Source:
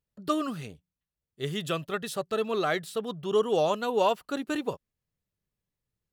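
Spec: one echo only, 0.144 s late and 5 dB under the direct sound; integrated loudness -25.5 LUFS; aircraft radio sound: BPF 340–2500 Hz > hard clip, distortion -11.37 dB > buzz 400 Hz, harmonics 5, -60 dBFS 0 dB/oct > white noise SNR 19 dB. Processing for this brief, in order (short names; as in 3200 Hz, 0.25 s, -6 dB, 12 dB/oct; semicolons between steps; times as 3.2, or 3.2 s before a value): BPF 340–2500 Hz; echo 0.144 s -5 dB; hard clip -24 dBFS; buzz 400 Hz, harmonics 5, -60 dBFS 0 dB/oct; white noise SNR 19 dB; gain +6 dB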